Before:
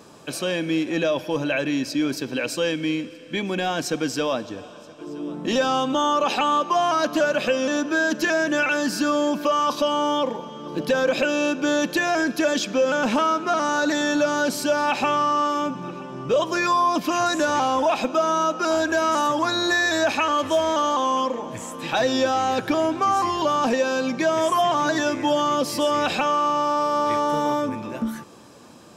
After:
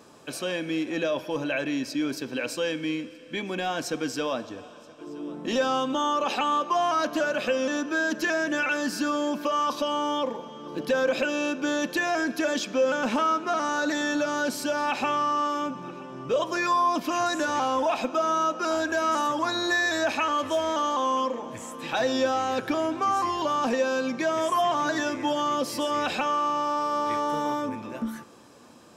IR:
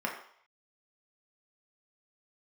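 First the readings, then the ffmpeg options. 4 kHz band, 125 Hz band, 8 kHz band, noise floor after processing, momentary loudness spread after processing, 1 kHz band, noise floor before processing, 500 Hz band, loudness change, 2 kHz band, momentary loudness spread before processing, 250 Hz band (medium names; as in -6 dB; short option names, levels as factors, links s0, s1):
-5.0 dB, -7.5 dB, -5.0 dB, -46 dBFS, 9 LU, -4.0 dB, -42 dBFS, -5.0 dB, -4.5 dB, -3.5 dB, 8 LU, -4.5 dB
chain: -filter_complex "[0:a]asplit=2[s0][s1];[1:a]atrim=start_sample=2205[s2];[s1][s2]afir=irnorm=-1:irlink=0,volume=0.133[s3];[s0][s3]amix=inputs=2:normalize=0,volume=0.531"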